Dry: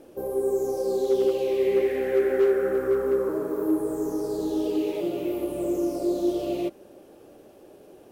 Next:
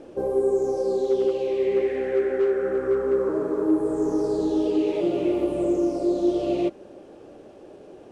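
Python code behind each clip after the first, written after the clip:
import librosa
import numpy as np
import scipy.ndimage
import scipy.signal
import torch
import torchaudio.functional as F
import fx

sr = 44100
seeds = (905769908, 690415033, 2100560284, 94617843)

y = scipy.signal.sosfilt(scipy.signal.butter(4, 8700.0, 'lowpass', fs=sr, output='sos'), x)
y = fx.high_shelf(y, sr, hz=4400.0, db=-7.0)
y = fx.rider(y, sr, range_db=10, speed_s=0.5)
y = F.gain(torch.from_numpy(y), 2.0).numpy()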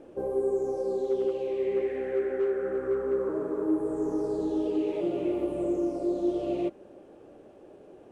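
y = fx.peak_eq(x, sr, hz=4900.0, db=-6.5, octaves=1.2)
y = F.gain(torch.from_numpy(y), -5.5).numpy()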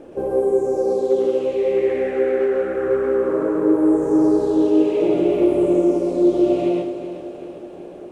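y = fx.rider(x, sr, range_db=10, speed_s=0.5)
y = fx.echo_feedback(y, sr, ms=380, feedback_pct=58, wet_db=-11)
y = fx.rev_plate(y, sr, seeds[0], rt60_s=0.53, hf_ratio=0.95, predelay_ms=105, drr_db=-1.5)
y = F.gain(torch.from_numpy(y), 7.0).numpy()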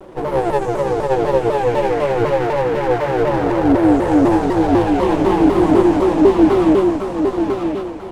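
y = fx.lower_of_two(x, sr, delay_ms=6.0)
y = y + 10.0 ** (-4.0 / 20.0) * np.pad(y, (int(989 * sr / 1000.0), 0))[:len(y)]
y = fx.vibrato_shape(y, sr, shape='saw_down', rate_hz=4.0, depth_cents=250.0)
y = F.gain(torch.from_numpy(y), 3.5).numpy()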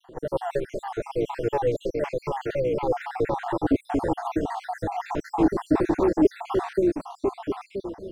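y = fx.spec_dropout(x, sr, seeds[1], share_pct=64)
y = F.gain(torch.from_numpy(y), -6.0).numpy()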